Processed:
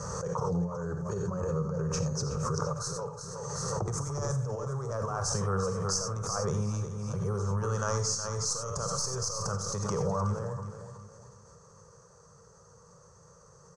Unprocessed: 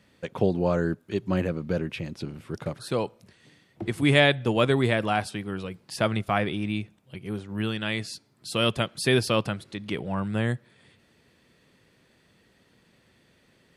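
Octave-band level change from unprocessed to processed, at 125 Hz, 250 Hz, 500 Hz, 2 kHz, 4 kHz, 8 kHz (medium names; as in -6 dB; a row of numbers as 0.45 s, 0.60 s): -1.5 dB, -8.5 dB, -6.5 dB, -16.0 dB, -8.5 dB, +10.5 dB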